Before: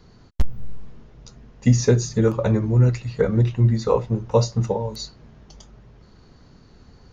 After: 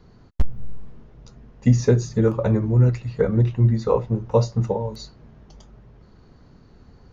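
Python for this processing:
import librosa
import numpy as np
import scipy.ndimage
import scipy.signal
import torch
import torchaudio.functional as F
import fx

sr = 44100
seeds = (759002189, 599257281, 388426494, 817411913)

y = fx.high_shelf(x, sr, hz=2600.0, db=-8.5)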